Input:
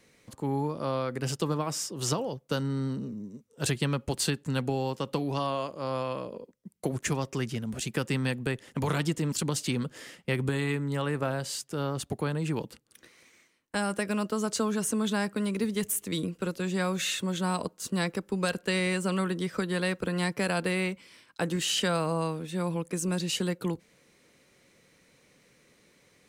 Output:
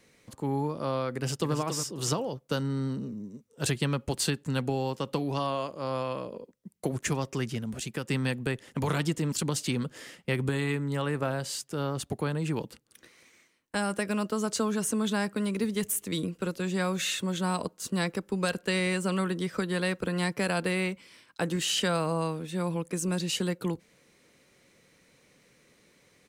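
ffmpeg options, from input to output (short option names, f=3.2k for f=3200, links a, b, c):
-filter_complex "[0:a]asplit=2[a][b];[b]afade=t=in:st=1.12:d=0.01,afade=t=out:st=1.55:d=0.01,aecho=0:1:280|560|840:0.421697|0.105424|0.026356[c];[a][c]amix=inputs=2:normalize=0,asplit=2[d][e];[d]atrim=end=8.08,asetpts=PTS-STARTPTS,afade=t=out:st=7.62:d=0.46:silence=0.501187[f];[e]atrim=start=8.08,asetpts=PTS-STARTPTS,afade=t=in:d=0.004:c=hsin:silence=0.501187[g];[f][g]concat=n=2:v=0:a=1"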